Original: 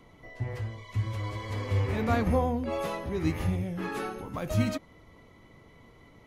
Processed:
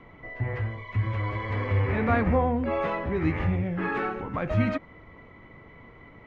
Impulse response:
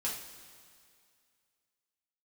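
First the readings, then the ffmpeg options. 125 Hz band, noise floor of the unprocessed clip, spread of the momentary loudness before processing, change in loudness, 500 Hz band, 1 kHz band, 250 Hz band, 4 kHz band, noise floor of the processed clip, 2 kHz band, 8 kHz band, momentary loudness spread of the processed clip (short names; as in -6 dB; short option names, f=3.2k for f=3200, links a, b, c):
+3.0 dB, -56 dBFS, 10 LU, +3.5 dB, +3.5 dB, +4.5 dB, +3.0 dB, -3.5 dB, -50 dBFS, +7.0 dB, under -15 dB, 8 LU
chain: -filter_complex "[0:a]asplit=2[a][b];[b]alimiter=level_in=2dB:limit=-24dB:level=0:latency=1,volume=-2dB,volume=-3dB[c];[a][c]amix=inputs=2:normalize=0,lowpass=f=2k:t=q:w=1.6"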